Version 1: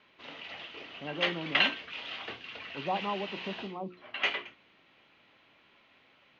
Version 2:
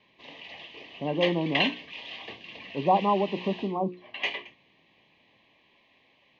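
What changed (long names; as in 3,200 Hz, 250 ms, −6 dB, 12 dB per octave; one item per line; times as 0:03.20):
speech +10.5 dB
master: add Butterworth band-reject 1,400 Hz, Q 2.4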